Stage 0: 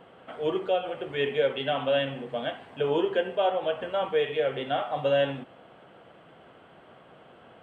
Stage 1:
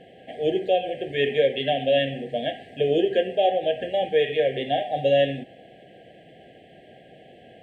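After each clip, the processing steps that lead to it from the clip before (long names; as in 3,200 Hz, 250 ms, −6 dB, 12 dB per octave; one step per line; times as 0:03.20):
brick-wall band-stop 790–1,600 Hz
level +4.5 dB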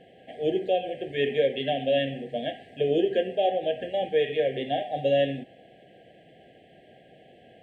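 dynamic equaliser 250 Hz, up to +4 dB, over −32 dBFS, Q 0.9
level −4.5 dB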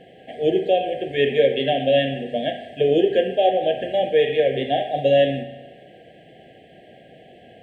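convolution reverb RT60 1.2 s, pre-delay 37 ms, DRR 10 dB
level +6 dB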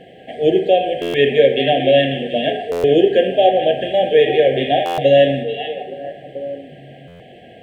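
echo through a band-pass that steps 435 ms, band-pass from 2,700 Hz, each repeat −1.4 octaves, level −6 dB
buffer that repeats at 0:01.01/0:02.71/0:04.85/0:07.07, samples 512, times 10
level +5 dB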